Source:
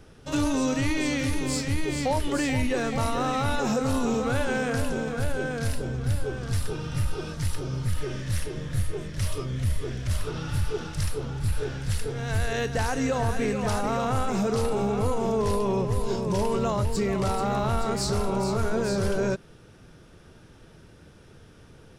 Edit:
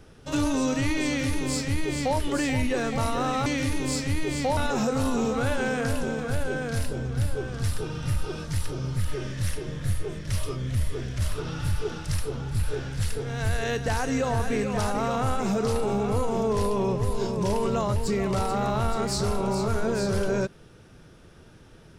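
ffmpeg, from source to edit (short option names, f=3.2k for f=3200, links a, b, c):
-filter_complex "[0:a]asplit=3[a][b][c];[a]atrim=end=3.462[d];[b]atrim=start=1.068:end=2.182[e];[c]atrim=start=3.458[f];[d][e]acrossfade=d=0.004:c1=hsin:c2=hsin[g];[g][f]acrossfade=d=0.004:c1=hsin:c2=hsin"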